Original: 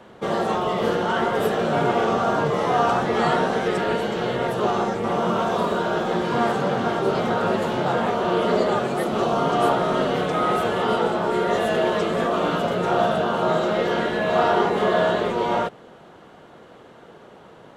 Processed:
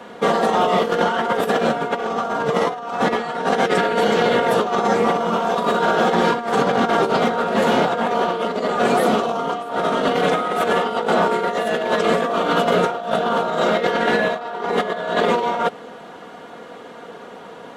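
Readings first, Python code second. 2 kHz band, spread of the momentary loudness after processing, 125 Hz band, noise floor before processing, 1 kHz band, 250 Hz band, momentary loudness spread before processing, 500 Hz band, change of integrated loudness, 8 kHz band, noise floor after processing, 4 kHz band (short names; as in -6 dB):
+4.0 dB, 8 LU, -1.5 dB, -47 dBFS, +3.0 dB, +1.5 dB, 3 LU, +2.5 dB, +2.5 dB, +4.5 dB, -38 dBFS, +4.0 dB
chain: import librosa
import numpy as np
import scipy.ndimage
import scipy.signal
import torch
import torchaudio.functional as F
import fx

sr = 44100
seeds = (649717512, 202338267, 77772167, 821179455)

y = fx.highpass(x, sr, hz=240.0, slope=6)
y = y + 0.44 * np.pad(y, (int(4.2 * sr / 1000.0), 0))[:len(y)]
y = fx.over_compress(y, sr, threshold_db=-24.0, ratio=-0.5)
y = F.gain(torch.from_numpy(y), 5.5).numpy()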